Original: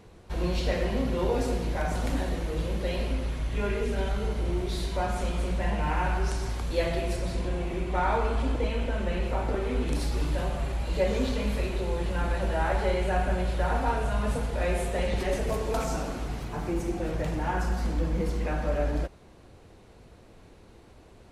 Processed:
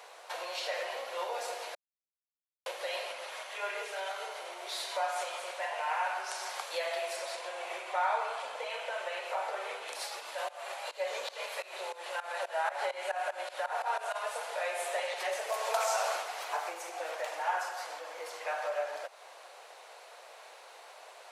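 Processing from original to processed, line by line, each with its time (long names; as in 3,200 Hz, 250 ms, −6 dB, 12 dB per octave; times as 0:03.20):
0:01.75–0:02.66: silence
0:10.19–0:14.15: shaped tremolo saw up 2 Hz → 7 Hz, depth 90%
0:15.52–0:16.15: high-pass filter 440 Hz 24 dB per octave
whole clip: downward compressor, threshold −34 dBFS; Butterworth high-pass 580 Hz 36 dB per octave; level +9 dB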